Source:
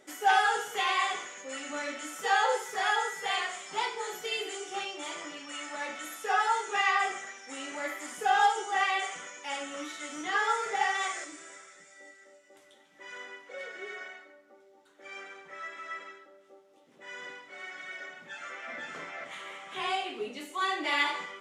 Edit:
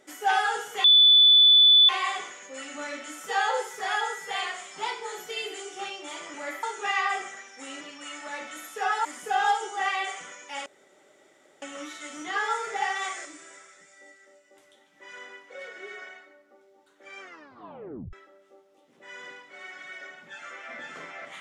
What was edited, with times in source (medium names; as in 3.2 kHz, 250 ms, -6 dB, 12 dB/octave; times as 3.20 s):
0.84 s: add tone 3.48 kHz -12.5 dBFS 1.05 s
5.29–6.53 s: swap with 7.71–8.00 s
9.61 s: insert room tone 0.96 s
15.20 s: tape stop 0.92 s